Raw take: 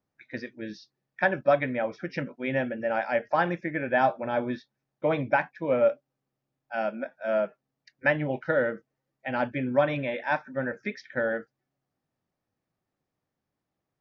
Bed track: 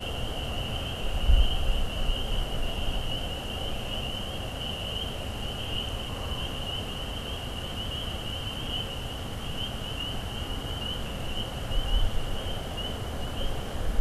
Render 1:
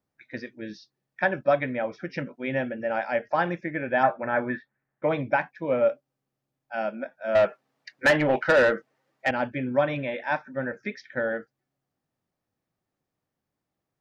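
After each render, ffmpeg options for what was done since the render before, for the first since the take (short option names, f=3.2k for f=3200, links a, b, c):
-filter_complex "[0:a]asettb=1/sr,asplit=3[a][b][c];[a]atrim=end=4.034[d];[b]atrim=start=4.03:end=5.09,asetpts=PTS-STARTPTS,afade=t=in:d=0.004:c=qsin,afade=t=out:st=1.056:d=0.004:c=qsin,lowpass=f=1.8k:t=q:w=3.4[e];[c]atrim=start=5.086[f];[d][e]acrossfade=d=0.004:c1=hsin:c2=qsin[g];[g][f]acrossfade=d=0.004:c1=qsin:c2=hsin,asettb=1/sr,asplit=3[h][i][j];[h]atrim=end=7.354[k];[i]atrim=start=7.35:end=9.31,asetpts=PTS-STARTPTS,afade=t=in:d=0.004:c=qsin,afade=t=out:st=1.956:d=0.004:c=qsin,asplit=2[l][m];[m]highpass=f=720:p=1,volume=21dB,asoftclip=type=tanh:threshold=-10.5dB[n];[l][n]amix=inputs=2:normalize=0,lowpass=f=2.9k:p=1,volume=-6dB[o];[j]atrim=start=9.306[p];[k][o]acrossfade=d=0.004:c1=hsin:c2=qsin[q];[q][p]acrossfade=d=0.004:c1=qsin:c2=hsin"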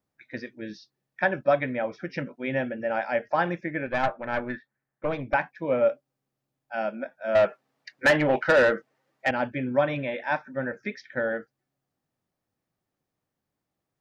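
-filter_complex "[0:a]asettb=1/sr,asplit=3[a][b][c];[a]atrim=end=3.864[d];[b]atrim=start=3.86:end=5.34,asetpts=PTS-STARTPTS,afade=t=in:d=0.004:c=qsin,afade=t=out:st=1.476:d=0.004:c=qsin,aeval=exprs='(tanh(7.08*val(0)+0.7)-tanh(0.7))/7.08':c=same[e];[c]atrim=start=5.336[f];[d][e]acrossfade=d=0.004:c1=hsin:c2=qsin[g];[g][f]acrossfade=d=0.004:c1=qsin:c2=hsin"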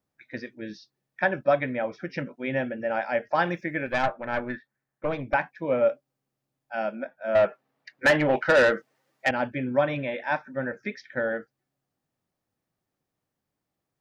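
-filter_complex "[0:a]asettb=1/sr,asplit=3[a][b][c];[a]atrim=end=3.354[d];[b]atrim=start=3.35:end=4.03,asetpts=PTS-STARTPTS,afade=t=in:d=0.004:c=qsin,afade=t=out:st=0.676:d=0.004:c=qsin,highshelf=f=3.7k:g=10[e];[c]atrim=start=4.026[f];[d][e]acrossfade=d=0.004:c1=hsin:c2=qsin[g];[g][f]acrossfade=d=0.004:c1=qsin:c2=hsin,asettb=1/sr,asplit=3[h][i][j];[h]atrim=end=7.054[k];[i]atrim=start=7.05:end=8.02,asetpts=PTS-STARTPTS,afade=t=in:d=0.004:c=qsin,afade=t=out:st=0.966:d=0.004:c=qsin,equalizer=f=6.5k:w=0.62:g=-6[l];[j]atrim=start=8.016[m];[k][l]acrossfade=d=0.004:c1=hsin:c2=qsin[n];[n][m]acrossfade=d=0.004:c1=qsin:c2=hsin,asettb=1/sr,asplit=3[o][p][q];[o]atrim=end=8.554[r];[p]atrim=start=8.55:end=9.29,asetpts=PTS-STARTPTS,afade=t=in:d=0.004:c=qsin,afade=t=out:st=0.736:d=0.004:c=qsin,highshelf=f=3.5k:g=7[s];[q]atrim=start=9.286[t];[r][s]acrossfade=d=0.004:c1=hsin:c2=qsin[u];[u][t]acrossfade=d=0.004:c1=qsin:c2=hsin"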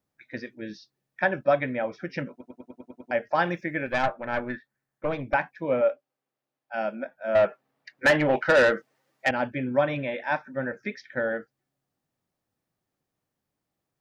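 -filter_complex "[0:a]asettb=1/sr,asplit=3[a][b][c];[a]atrim=end=5.814[d];[b]atrim=start=5.81:end=6.74,asetpts=PTS-STARTPTS,afade=t=in:d=0.004:c=qsin,afade=t=out:st=0.926:d=0.004:c=qsin,bass=f=250:g=-15,treble=f=4k:g=-7[e];[c]atrim=start=6.736[f];[d][e]acrossfade=d=0.004:c1=hsin:c2=qsin[g];[g][f]acrossfade=d=0.004:c1=qsin:c2=hsin,asplit=9[h][i][j][k][l][m][n][o][p];[h]atrim=end=2.412[q];[i]atrim=start=2.308:end=2.412[r];[j]atrim=start=2.308:end=2.412[s];[k]atrim=start=2.308:end=2.412[t];[l]atrim=start=2.308:end=2.412[u];[m]atrim=start=2.308:end=2.412[v];[n]atrim=start=2.308:end=2.412[w];[o]atrim=start=2.308:end=2.412[x];[p]atrim=start=3.108[y];[q][r]acrossfade=d=0.004:c1=hsin:c2=hsin[z];[z][s]acrossfade=d=0.004:c1=hsin:c2=hsin[aa];[aa][t]acrossfade=d=0.004:c1=hsin:c2=hsin[ab];[ab][u]acrossfade=d=0.004:c1=hsin:c2=hsin[ac];[ac][v]acrossfade=d=0.004:c1=hsin:c2=hsin[ad];[ad][w]acrossfade=d=0.004:c1=hsin:c2=hsin[ae];[ae][x]acrossfade=d=0.004:c1=hsin:c2=hsin[af];[af][y]acrossfade=d=0.004:c1=hsin:c2=hsin"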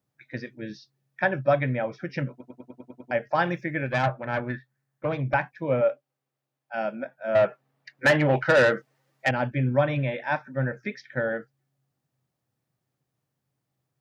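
-af "highpass=53,equalizer=f=130:w=4.7:g=14.5"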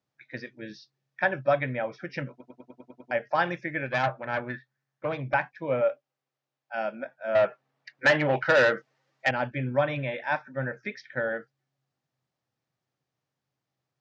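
-af "lowpass=f=6.4k:w=0.5412,lowpass=f=6.4k:w=1.3066,lowshelf=f=340:g=-8"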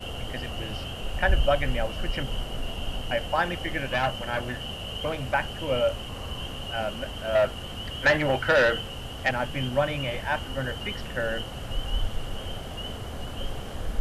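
-filter_complex "[1:a]volume=-2dB[a];[0:a][a]amix=inputs=2:normalize=0"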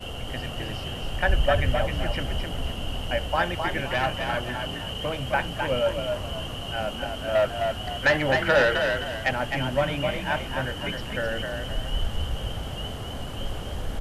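-filter_complex "[0:a]asplit=5[a][b][c][d][e];[b]adelay=260,afreqshift=38,volume=-5dB[f];[c]adelay=520,afreqshift=76,volume=-14.6dB[g];[d]adelay=780,afreqshift=114,volume=-24.3dB[h];[e]adelay=1040,afreqshift=152,volume=-33.9dB[i];[a][f][g][h][i]amix=inputs=5:normalize=0"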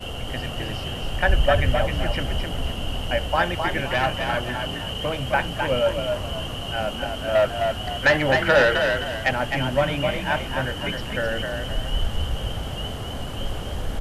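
-af "volume=3dB"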